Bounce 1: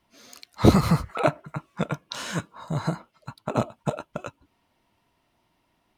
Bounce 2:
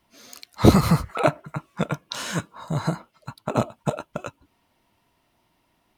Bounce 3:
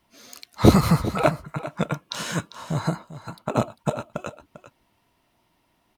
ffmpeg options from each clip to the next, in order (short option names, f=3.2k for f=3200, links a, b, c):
-af "highshelf=f=9.4k:g=5.5,volume=2dB"
-af "aecho=1:1:397:0.2"